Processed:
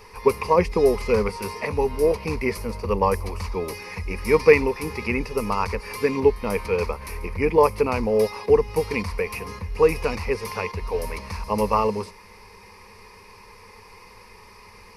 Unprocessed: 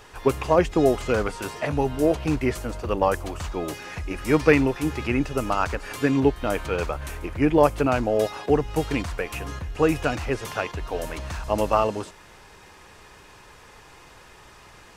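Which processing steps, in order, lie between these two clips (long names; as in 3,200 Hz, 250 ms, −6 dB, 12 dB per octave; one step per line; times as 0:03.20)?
EQ curve with evenly spaced ripples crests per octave 0.87, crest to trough 14 dB
level −1.5 dB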